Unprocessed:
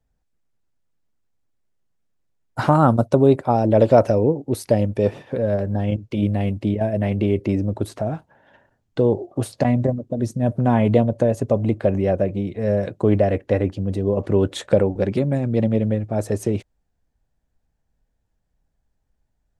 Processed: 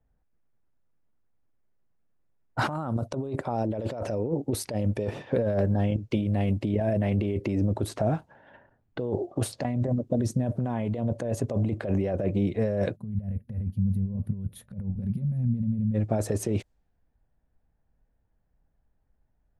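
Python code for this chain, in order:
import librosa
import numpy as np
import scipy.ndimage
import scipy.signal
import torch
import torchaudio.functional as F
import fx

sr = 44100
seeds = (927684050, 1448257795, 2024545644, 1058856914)

y = fx.over_compress(x, sr, threshold_db=-23.0, ratio=-1.0)
y = fx.env_lowpass(y, sr, base_hz=1900.0, full_db=-22.5)
y = fx.spec_box(y, sr, start_s=12.96, length_s=2.99, low_hz=240.0, high_hz=9400.0, gain_db=-24)
y = y * librosa.db_to_amplitude(-3.5)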